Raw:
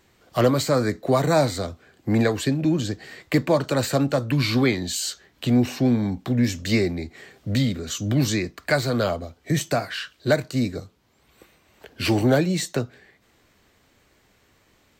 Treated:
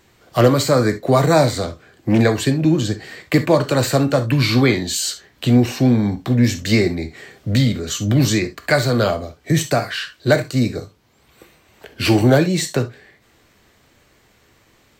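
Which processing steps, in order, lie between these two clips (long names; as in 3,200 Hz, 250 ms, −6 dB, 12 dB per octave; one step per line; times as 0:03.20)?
convolution reverb, pre-delay 3 ms, DRR 9.5 dB
0:01.52–0:02.20: highs frequency-modulated by the lows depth 0.39 ms
level +5 dB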